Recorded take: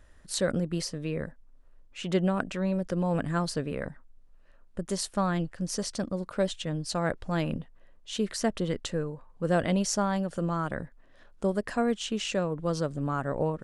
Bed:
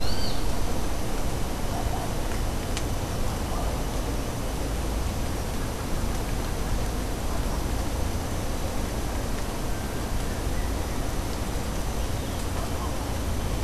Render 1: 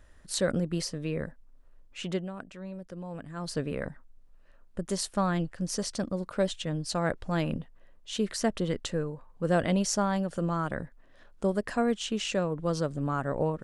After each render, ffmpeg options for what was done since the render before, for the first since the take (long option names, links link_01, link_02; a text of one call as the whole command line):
ffmpeg -i in.wav -filter_complex "[0:a]asplit=3[link_01][link_02][link_03];[link_01]atrim=end=2.25,asetpts=PTS-STARTPTS,afade=type=out:start_time=2.02:duration=0.23:silence=0.251189[link_04];[link_02]atrim=start=2.25:end=3.36,asetpts=PTS-STARTPTS,volume=-12dB[link_05];[link_03]atrim=start=3.36,asetpts=PTS-STARTPTS,afade=type=in:duration=0.23:silence=0.251189[link_06];[link_04][link_05][link_06]concat=n=3:v=0:a=1" out.wav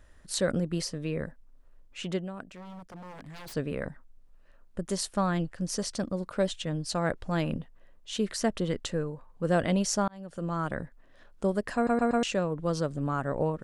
ffmpeg -i in.wav -filter_complex "[0:a]asettb=1/sr,asplit=3[link_01][link_02][link_03];[link_01]atrim=end=2.474[link_04];[link_02]atrim=start=2.47:end=3.54,asetpts=PTS-STARTPTS,afade=type=in:duration=0.004:curve=qsin,afade=type=out:start_time=1.066:duration=0.004:curve=qsin,aeval=exprs='0.0112*(abs(mod(val(0)/0.0112+3,4)-2)-1)':channel_layout=same[link_05];[link_03]atrim=start=3.536[link_06];[link_04][link_05]acrossfade=duration=0.004:curve1=hsin:curve2=qsin[link_07];[link_07][link_06]acrossfade=duration=0.004:curve1=qsin:curve2=hsin,asplit=6[link_08][link_09][link_10][link_11][link_12][link_13];[link_08]atrim=end=10.08,asetpts=PTS-STARTPTS,afade=type=out:start_time=10.076:duration=0.004:curve=hsin[link_14];[link_09]atrim=start=10.08:end=11.872,asetpts=PTS-STARTPTS,afade=type=in:duration=0.56[link_15];[link_10]atrim=start=11.748:end=11.872[link_16];[link_11]atrim=start=11.748:end=11.872[link_17];[link_12]atrim=start=11.748:end=11.872[link_18];[link_13]atrim=start=12.228[link_19];[link_14][link_15]concat=n=2:v=0:a=1[link_20];[link_20][link_16]acrossfade=duration=0.004:curve1=hsin:curve2=hsin[link_21];[link_21][link_17]acrossfade=duration=0.004:curve1=hsin:curve2=hsin[link_22];[link_22][link_18]acrossfade=duration=0.004:curve1=hsin:curve2=hsin[link_23];[link_23][link_19]acrossfade=duration=0.004:curve1=hsin:curve2=hsin" out.wav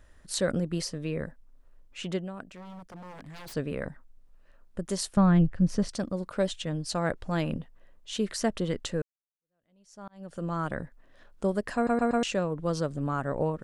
ffmpeg -i in.wav -filter_complex "[0:a]asettb=1/sr,asplit=3[link_01][link_02][link_03];[link_01]atrim=end=5.174[link_04];[link_02]atrim=start=5.17:end=5.89,asetpts=PTS-STARTPTS,afade=type=in:duration=0.004:curve=qsin,afade=type=out:start_time=0.716:duration=0.004:curve=qsin,bass=frequency=250:gain=12,treble=frequency=4000:gain=-12[link_05];[link_03]atrim=start=5.886[link_06];[link_04][link_05]acrossfade=duration=0.004:curve1=hsin:curve2=qsin[link_07];[link_07][link_06]acrossfade=duration=0.004:curve1=qsin:curve2=hsin,asplit=2[link_08][link_09];[link_08]atrim=end=9.02,asetpts=PTS-STARTPTS,afade=type=out:start_time=9.016:duration=0.004:curve=hsin[link_10];[link_09]atrim=start=9.02,asetpts=PTS-STARTPTS,afade=type=in:duration=1.21:curve=exp[link_11];[link_10][link_11]concat=n=2:v=0:a=1" out.wav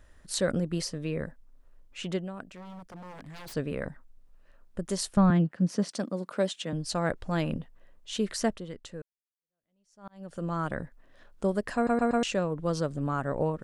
ffmpeg -i in.wav -filter_complex "[0:a]asettb=1/sr,asplit=3[link_01][link_02][link_03];[link_01]atrim=end=5.304[link_04];[link_02]atrim=start=5.3:end=6.73,asetpts=PTS-STARTPTS,afade=type=in:duration=0.004:curve=qsin,afade=type=out:start_time=1.426:duration=0.004:curve=qsin,highpass=frequency=170:width=0.5412,highpass=frequency=170:width=1.3066[link_05];[link_03]atrim=start=6.726[link_06];[link_04][link_05]acrossfade=duration=0.004:curve1=hsin:curve2=qsin[link_07];[link_07][link_06]acrossfade=duration=0.004:curve1=qsin:curve2=hsin,asplit=3[link_08][link_09][link_10];[link_08]atrim=end=8.8,asetpts=PTS-STARTPTS,afade=type=out:start_time=8.53:duration=0.27:curve=exp:silence=0.298538[link_11];[link_09]atrim=start=8.8:end=9.79,asetpts=PTS-STARTPTS,volume=-10.5dB[link_12];[link_10]atrim=start=9.79,asetpts=PTS-STARTPTS,afade=type=in:duration=0.27:curve=exp:silence=0.298538[link_13];[link_11][link_12][link_13]concat=n=3:v=0:a=1" out.wav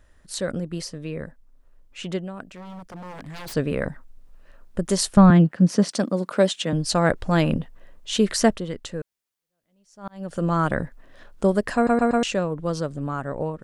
ffmpeg -i in.wav -af "dynaudnorm=framelen=610:gausssize=9:maxgain=11dB" out.wav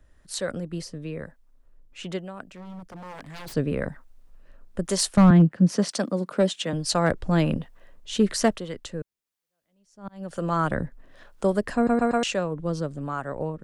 ffmpeg -i in.wav -filter_complex "[0:a]acrossover=split=460[link_01][link_02];[link_01]aeval=exprs='val(0)*(1-0.5/2+0.5/2*cos(2*PI*1.1*n/s))':channel_layout=same[link_03];[link_02]aeval=exprs='val(0)*(1-0.5/2-0.5/2*cos(2*PI*1.1*n/s))':channel_layout=same[link_04];[link_03][link_04]amix=inputs=2:normalize=0,acrossover=split=130[link_05][link_06];[link_06]volume=11.5dB,asoftclip=hard,volume=-11.5dB[link_07];[link_05][link_07]amix=inputs=2:normalize=0" out.wav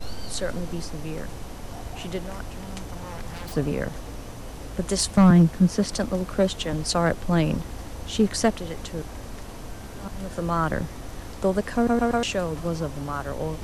ffmpeg -i in.wav -i bed.wav -filter_complex "[1:a]volume=-8.5dB[link_01];[0:a][link_01]amix=inputs=2:normalize=0" out.wav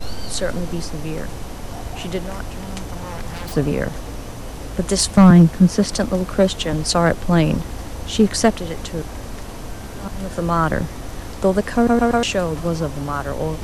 ffmpeg -i in.wav -af "volume=6dB" out.wav